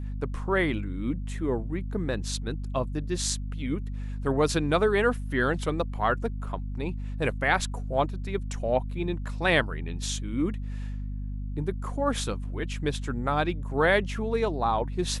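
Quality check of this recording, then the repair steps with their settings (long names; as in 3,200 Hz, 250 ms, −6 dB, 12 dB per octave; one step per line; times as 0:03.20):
mains hum 50 Hz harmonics 5 −33 dBFS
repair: hum removal 50 Hz, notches 5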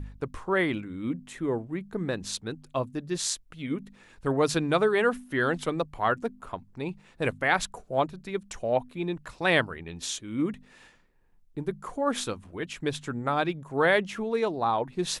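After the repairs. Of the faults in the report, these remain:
none of them is left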